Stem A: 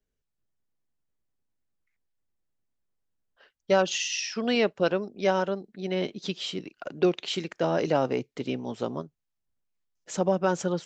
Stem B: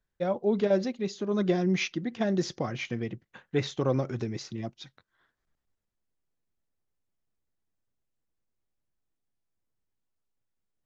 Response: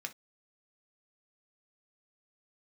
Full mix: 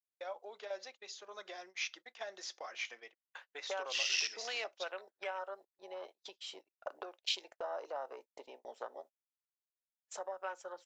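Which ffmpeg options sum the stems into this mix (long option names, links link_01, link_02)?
-filter_complex "[0:a]afwtdn=0.0224,acompressor=threshold=-34dB:ratio=12,volume=0.5dB,asplit=2[link_01][link_02];[link_02]volume=-7.5dB[link_03];[1:a]acompressor=threshold=-43dB:ratio=2,volume=-1.5dB,asplit=2[link_04][link_05];[link_05]volume=-9.5dB[link_06];[2:a]atrim=start_sample=2205[link_07];[link_03][link_06]amix=inputs=2:normalize=0[link_08];[link_08][link_07]afir=irnorm=-1:irlink=0[link_09];[link_01][link_04][link_09]amix=inputs=3:normalize=0,highpass=frequency=620:width=0.5412,highpass=frequency=620:width=1.3066,agate=range=-34dB:threshold=-54dB:ratio=16:detection=peak,highshelf=frequency=4300:gain=5.5"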